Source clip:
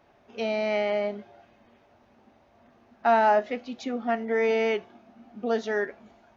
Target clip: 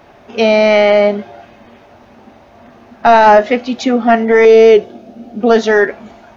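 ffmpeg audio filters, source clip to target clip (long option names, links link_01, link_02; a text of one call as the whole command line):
ffmpeg -i in.wav -filter_complex "[0:a]asettb=1/sr,asplit=3[link_01][link_02][link_03];[link_01]atrim=end=4.454[link_04];[link_02]atrim=start=4.45:end=5.41,asetpts=PTS-STARTPTS,afade=type=in:duration=0.004:curve=qsin,afade=type=out:start_time=0.956:duration=0.004:curve=qsin,equalizer=frequency=500:width_type=o:width=1:gain=9,equalizer=frequency=1000:width_type=o:width=1:gain=-12,equalizer=frequency=2000:width_type=o:width=1:gain=-6[link_05];[link_03]atrim=start=5.406[link_06];[link_04][link_05]acrossfade=duration=0.004:curve1=hsin:curve2=qsin[link_07];[link_07][link_06]acrossfade=duration=0.004:curve1=qsin:curve2=hsin,apsyclip=19.5dB,volume=-1.5dB" out.wav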